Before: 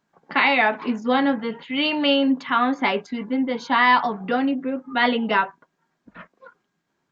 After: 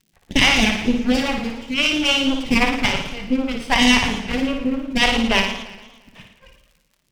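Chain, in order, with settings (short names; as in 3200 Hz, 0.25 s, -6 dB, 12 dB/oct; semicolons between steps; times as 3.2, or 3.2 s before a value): minimum comb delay 0.36 ms; low shelf 470 Hz +6 dB; added harmonics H 4 -9 dB, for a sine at -4.5 dBFS; crackle 49/s -41 dBFS; phaser stages 2, 3.7 Hz, lowest notch 200–1300 Hz; flutter echo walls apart 9.7 m, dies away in 0.6 s; warbling echo 0.116 s, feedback 56%, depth 214 cents, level -14 dB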